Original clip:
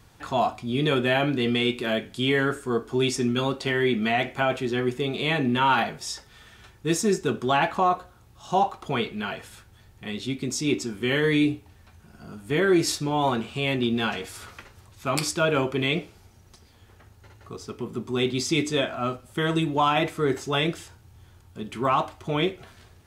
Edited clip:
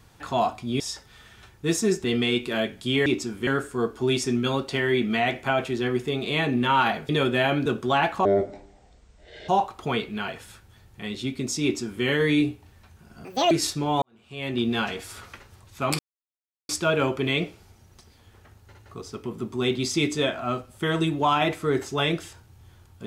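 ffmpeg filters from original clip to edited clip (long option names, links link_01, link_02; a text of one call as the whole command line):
ffmpeg -i in.wav -filter_complex "[0:a]asplit=13[link_01][link_02][link_03][link_04][link_05][link_06][link_07][link_08][link_09][link_10][link_11][link_12][link_13];[link_01]atrim=end=0.802[link_14];[link_02]atrim=start=6.008:end=7.252[link_15];[link_03]atrim=start=1.368:end=2.392[link_16];[link_04]atrim=start=10.658:end=11.072[link_17];[link_05]atrim=start=2.388:end=6.012[link_18];[link_06]atrim=start=0.798:end=1.372[link_19];[link_07]atrim=start=7.248:end=7.844[link_20];[link_08]atrim=start=7.84:end=8.52,asetpts=PTS-STARTPTS,asetrate=24255,aresample=44100[link_21];[link_09]atrim=start=8.516:end=12.284[link_22];[link_10]atrim=start=12.28:end=12.76,asetpts=PTS-STARTPTS,asetrate=80262,aresample=44100[link_23];[link_11]atrim=start=12.756:end=13.27,asetpts=PTS-STARTPTS,afade=type=out:start_time=0.51:duration=0.004:curve=hsin[link_24];[link_12]atrim=start=13.27:end=15.24,asetpts=PTS-STARTPTS,afade=type=in:duration=0.6:curve=qua,afade=type=out:start_time=1.966:duration=0.004:curve=hsin,apad=pad_dur=0.7[link_25];[link_13]atrim=start=15.24,asetpts=PTS-STARTPTS,afade=type=in:duration=0.004:curve=hsin[link_26];[link_14][link_15]acrossfade=duration=0.004:curve1=hsin:curve2=hsin[link_27];[link_27][link_16]acrossfade=duration=0.004:curve1=hsin:curve2=hsin[link_28];[link_28][link_17]acrossfade=duration=0.004:curve1=hsin:curve2=hsin[link_29];[link_29][link_18]acrossfade=duration=0.004:curve1=hsin:curve2=hsin[link_30];[link_30][link_19]acrossfade=duration=0.004:curve1=hsin:curve2=hsin[link_31];[link_31][link_20]acrossfade=duration=0.004:curve1=hsin:curve2=hsin[link_32];[link_32][link_21]acrossfade=duration=0.004:curve1=hsin:curve2=hsin[link_33];[link_33][link_22]acrossfade=duration=0.004:curve1=hsin:curve2=hsin[link_34];[link_34][link_23]acrossfade=duration=0.004:curve1=hsin:curve2=hsin[link_35];[link_24][link_25][link_26]concat=n=3:v=0:a=1[link_36];[link_35][link_36]acrossfade=duration=0.004:curve1=hsin:curve2=hsin" out.wav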